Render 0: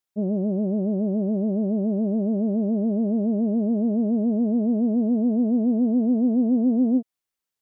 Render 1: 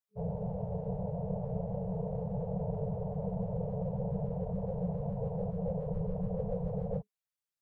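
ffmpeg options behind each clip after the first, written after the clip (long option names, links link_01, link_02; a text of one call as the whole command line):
ffmpeg -i in.wav -af "tremolo=f=250:d=0.75,afftfilt=real='hypot(re,im)*cos(2*PI*random(0))':imag='hypot(re,im)*sin(2*PI*random(1))':win_size=512:overlap=0.75,afftfilt=real='re*(1-between(b*sr/4096,200,430))':imag='im*(1-between(b*sr/4096,200,430))':win_size=4096:overlap=0.75" out.wav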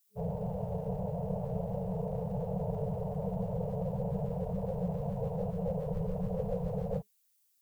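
ffmpeg -i in.wav -af "crystalizer=i=7.5:c=0" out.wav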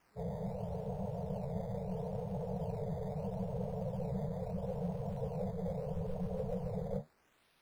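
ffmpeg -i in.wav -filter_complex "[0:a]acrossover=split=1200[link_01][link_02];[link_01]flanger=delay=7.6:depth=8.9:regen=57:speed=1.8:shape=triangular[link_03];[link_02]acrusher=samples=11:mix=1:aa=0.000001:lfo=1:lforange=11:lforate=0.76[link_04];[link_03][link_04]amix=inputs=2:normalize=0" out.wav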